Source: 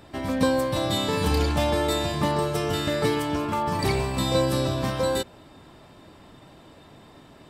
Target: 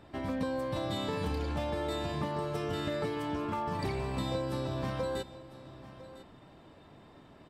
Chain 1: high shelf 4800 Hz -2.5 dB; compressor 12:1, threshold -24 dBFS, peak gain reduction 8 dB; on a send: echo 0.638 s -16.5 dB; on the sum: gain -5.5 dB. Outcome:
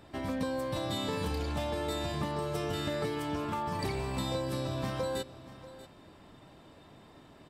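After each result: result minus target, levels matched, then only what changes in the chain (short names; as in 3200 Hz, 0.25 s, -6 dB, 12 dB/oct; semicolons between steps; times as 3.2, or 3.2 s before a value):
echo 0.364 s early; 8000 Hz band +5.5 dB
change: echo 1.002 s -16.5 dB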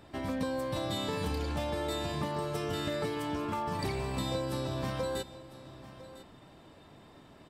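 8000 Hz band +5.5 dB
change: high shelf 4800 Hz -11 dB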